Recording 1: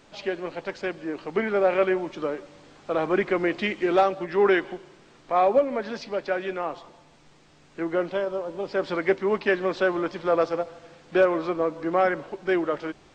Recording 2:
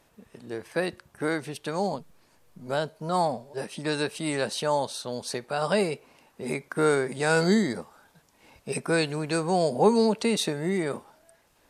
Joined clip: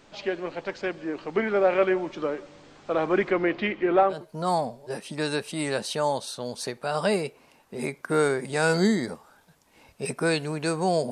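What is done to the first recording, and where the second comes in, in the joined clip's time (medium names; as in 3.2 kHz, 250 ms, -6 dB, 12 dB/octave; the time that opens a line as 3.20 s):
recording 1
3.30–4.26 s: low-pass 5 kHz -> 1.4 kHz
4.17 s: go over to recording 2 from 2.84 s, crossfade 0.18 s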